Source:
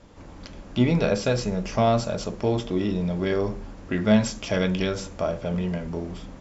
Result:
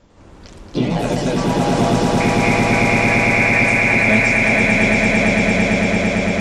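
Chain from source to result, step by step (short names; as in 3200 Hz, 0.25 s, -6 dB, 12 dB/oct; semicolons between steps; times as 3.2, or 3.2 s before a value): echoes that change speed 0.101 s, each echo +3 st, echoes 3; 2.2–3.62 inverted band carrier 2600 Hz; swelling echo 0.113 s, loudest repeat 8, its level -4 dB; gain -1 dB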